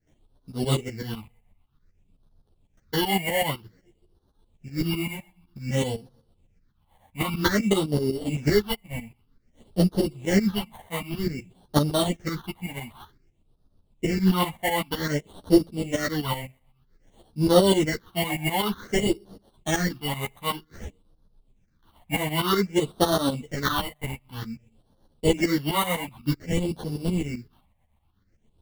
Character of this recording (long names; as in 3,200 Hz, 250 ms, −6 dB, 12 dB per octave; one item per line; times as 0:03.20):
aliases and images of a low sample rate 2,500 Hz, jitter 0%
phaser sweep stages 6, 0.53 Hz, lowest notch 360–2,200 Hz
tremolo saw up 7.9 Hz, depth 80%
a shimmering, thickened sound